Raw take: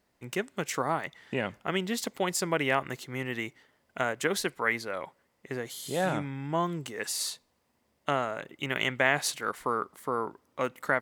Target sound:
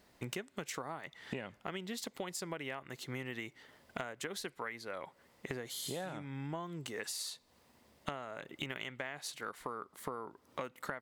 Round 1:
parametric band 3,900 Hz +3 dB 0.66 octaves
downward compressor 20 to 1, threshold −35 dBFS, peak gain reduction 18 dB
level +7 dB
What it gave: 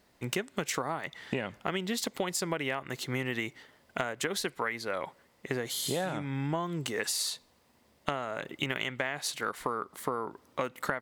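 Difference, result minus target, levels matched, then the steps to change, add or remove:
downward compressor: peak gain reduction −9 dB
change: downward compressor 20 to 1, threshold −44.5 dBFS, peak gain reduction 27 dB

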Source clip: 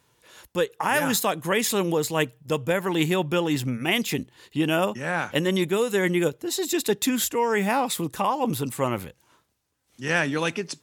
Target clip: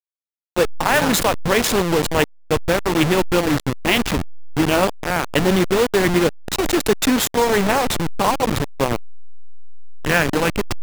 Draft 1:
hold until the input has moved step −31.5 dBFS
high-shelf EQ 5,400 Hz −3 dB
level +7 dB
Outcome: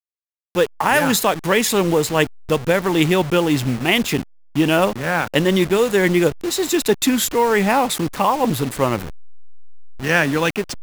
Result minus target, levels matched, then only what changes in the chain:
hold until the input has moved: distortion −12 dB
change: hold until the input has moved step −20.5 dBFS

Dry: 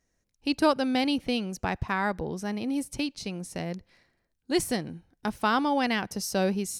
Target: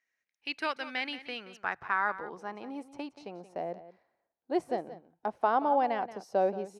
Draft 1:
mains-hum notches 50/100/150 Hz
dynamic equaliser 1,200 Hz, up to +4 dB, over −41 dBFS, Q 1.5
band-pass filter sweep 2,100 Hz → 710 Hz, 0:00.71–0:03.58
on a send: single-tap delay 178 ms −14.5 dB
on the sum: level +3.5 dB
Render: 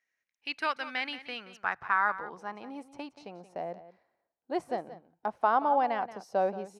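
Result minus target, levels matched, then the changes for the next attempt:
500 Hz band −2.5 dB
change: dynamic equaliser 370 Hz, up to +4 dB, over −41 dBFS, Q 1.5

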